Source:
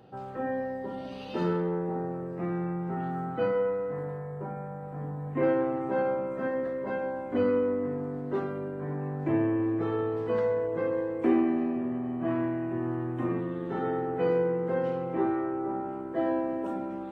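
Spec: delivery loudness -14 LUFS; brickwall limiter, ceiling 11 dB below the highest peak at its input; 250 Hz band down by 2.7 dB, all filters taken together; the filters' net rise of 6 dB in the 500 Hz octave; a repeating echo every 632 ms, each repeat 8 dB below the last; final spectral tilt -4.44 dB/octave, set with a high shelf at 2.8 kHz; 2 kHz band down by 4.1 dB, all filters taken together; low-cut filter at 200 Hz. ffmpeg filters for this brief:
-af "highpass=200,equalizer=f=250:t=o:g=-7,equalizer=f=500:t=o:g=8.5,equalizer=f=2000:t=o:g=-8,highshelf=f=2800:g=5,alimiter=limit=0.0708:level=0:latency=1,aecho=1:1:632|1264|1896|2528|3160:0.398|0.159|0.0637|0.0255|0.0102,volume=6.31"

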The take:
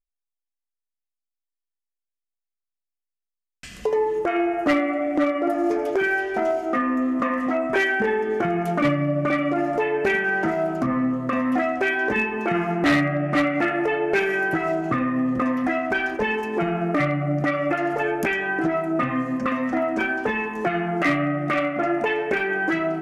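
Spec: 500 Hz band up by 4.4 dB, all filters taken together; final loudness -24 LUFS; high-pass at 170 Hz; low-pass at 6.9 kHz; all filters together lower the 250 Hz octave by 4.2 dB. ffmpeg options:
-af "highpass=170,lowpass=6900,equalizer=f=250:t=o:g=-8.5,equalizer=f=500:t=o:g=8.5,volume=0.75"

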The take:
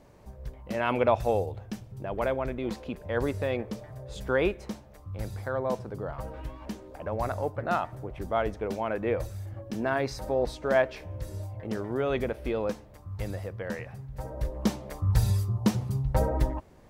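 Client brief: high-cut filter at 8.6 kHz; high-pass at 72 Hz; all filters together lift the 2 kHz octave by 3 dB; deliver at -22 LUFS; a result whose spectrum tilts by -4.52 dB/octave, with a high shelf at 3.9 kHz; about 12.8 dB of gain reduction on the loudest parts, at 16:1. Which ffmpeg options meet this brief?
-af "highpass=72,lowpass=8600,equalizer=f=2000:t=o:g=6,highshelf=f=3900:g=-8.5,acompressor=threshold=0.0316:ratio=16,volume=5.96"

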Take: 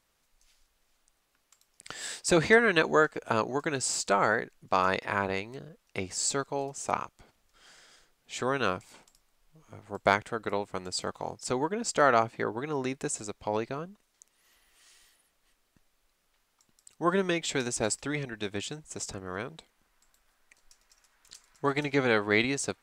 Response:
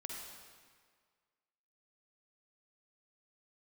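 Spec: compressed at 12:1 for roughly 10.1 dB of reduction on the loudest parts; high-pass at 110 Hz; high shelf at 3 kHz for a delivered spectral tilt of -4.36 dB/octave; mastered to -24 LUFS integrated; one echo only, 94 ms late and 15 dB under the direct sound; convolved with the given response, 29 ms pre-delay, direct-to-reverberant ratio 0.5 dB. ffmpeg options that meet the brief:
-filter_complex "[0:a]highpass=110,highshelf=f=3000:g=-9,acompressor=threshold=0.0501:ratio=12,aecho=1:1:94:0.178,asplit=2[s0][s1];[1:a]atrim=start_sample=2205,adelay=29[s2];[s1][s2]afir=irnorm=-1:irlink=0,volume=1.12[s3];[s0][s3]amix=inputs=2:normalize=0,volume=2.66"

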